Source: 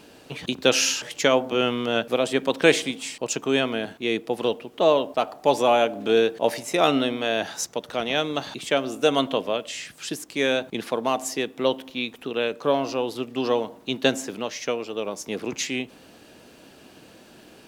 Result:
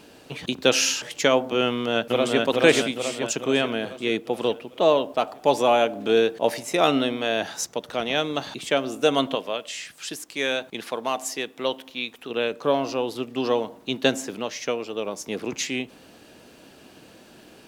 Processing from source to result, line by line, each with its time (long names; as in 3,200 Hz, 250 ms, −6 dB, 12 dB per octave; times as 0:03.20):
0:01.67–0:02.40: delay throw 430 ms, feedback 55%, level −1.5 dB
0:09.35–0:12.30: low-shelf EQ 500 Hz −8 dB